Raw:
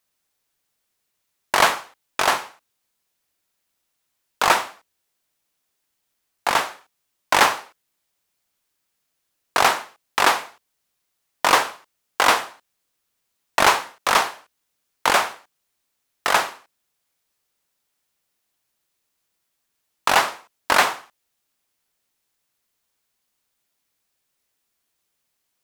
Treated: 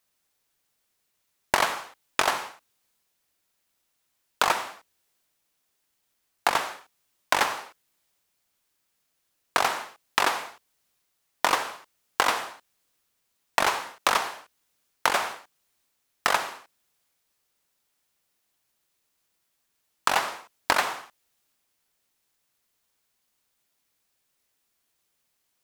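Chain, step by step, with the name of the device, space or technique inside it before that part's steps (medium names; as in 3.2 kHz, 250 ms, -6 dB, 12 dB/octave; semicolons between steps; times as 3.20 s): drum-bus smash (transient shaper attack +7 dB, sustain +2 dB; compression 10:1, threshold -18 dBFS, peak gain reduction 13.5 dB; saturation -4 dBFS, distortion -20 dB)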